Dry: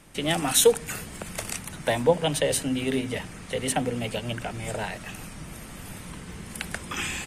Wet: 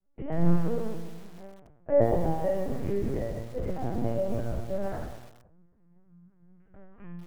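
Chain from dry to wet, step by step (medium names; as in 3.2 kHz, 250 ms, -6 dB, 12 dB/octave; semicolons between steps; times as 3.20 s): Bessel low-pass 1.1 kHz, order 6; gate -33 dBFS, range -25 dB; peaking EQ 190 Hz +12.5 dB 0.36 oct; peak limiter -17.5 dBFS, peak gain reduction 11 dB; feedback comb 81 Hz, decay 0.27 s, harmonics all, mix 80%; flutter echo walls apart 3 m, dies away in 0.96 s; simulated room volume 320 m³, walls furnished, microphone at 2.3 m; LPC vocoder at 8 kHz pitch kept; bit-crushed delay 129 ms, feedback 55%, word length 6-bit, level -13 dB; trim -4.5 dB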